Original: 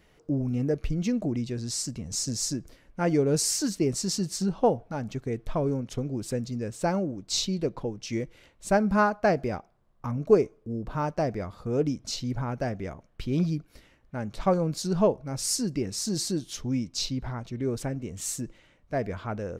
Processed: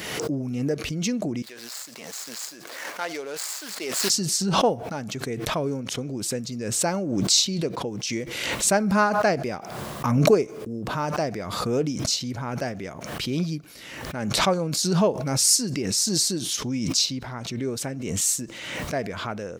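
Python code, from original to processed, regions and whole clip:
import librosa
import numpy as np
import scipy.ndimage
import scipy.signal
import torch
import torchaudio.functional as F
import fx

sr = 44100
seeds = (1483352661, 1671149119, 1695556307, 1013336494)

y = fx.chain(x, sr, fx.median_filter(points=15),
    fx.highpass(hz=770.0, slope=12), at=(1.42, 4.1))
y = scipy.signal.sosfilt(scipy.signal.butter(2, 130.0, 'highpass', fs=sr, output='sos'), y)
y = fx.high_shelf(y, sr, hz=2100.0, db=10.0)
y = fx.pre_swell(y, sr, db_per_s=37.0)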